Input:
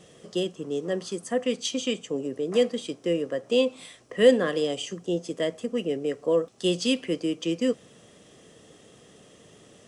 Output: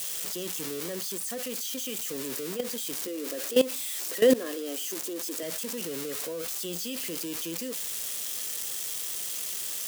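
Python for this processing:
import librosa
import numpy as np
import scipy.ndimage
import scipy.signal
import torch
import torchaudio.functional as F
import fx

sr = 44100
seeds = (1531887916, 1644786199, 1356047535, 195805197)

y = x + 0.5 * 10.0 ** (-16.0 / 20.0) * np.diff(np.sign(x), prepend=np.sign(x[:1]))
y = fx.low_shelf_res(y, sr, hz=210.0, db=-10.5, q=3.0, at=(3.07, 5.43))
y = fx.level_steps(y, sr, step_db=17)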